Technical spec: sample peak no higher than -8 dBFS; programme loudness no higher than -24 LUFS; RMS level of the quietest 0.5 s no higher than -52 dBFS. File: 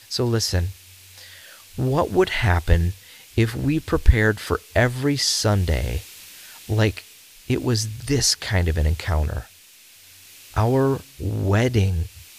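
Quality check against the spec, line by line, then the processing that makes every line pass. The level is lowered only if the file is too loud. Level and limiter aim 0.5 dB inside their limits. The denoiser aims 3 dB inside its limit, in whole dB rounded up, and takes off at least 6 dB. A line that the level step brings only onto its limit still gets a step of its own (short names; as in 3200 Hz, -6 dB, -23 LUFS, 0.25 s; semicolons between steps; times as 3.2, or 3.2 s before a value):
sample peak -1.5 dBFS: fail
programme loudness -22.0 LUFS: fail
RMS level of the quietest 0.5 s -49 dBFS: fail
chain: denoiser 6 dB, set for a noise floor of -49 dBFS; gain -2.5 dB; limiter -8.5 dBFS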